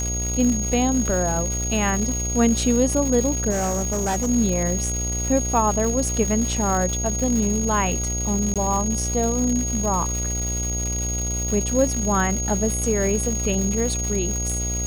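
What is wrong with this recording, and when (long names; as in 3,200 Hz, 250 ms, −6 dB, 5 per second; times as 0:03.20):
mains buzz 60 Hz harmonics 13 −27 dBFS
surface crackle 400 per second −26 dBFS
whistle 6,600 Hz −26 dBFS
0:03.50–0:04.30: clipping −19.5 dBFS
0:08.54–0:08.56: drop-out 17 ms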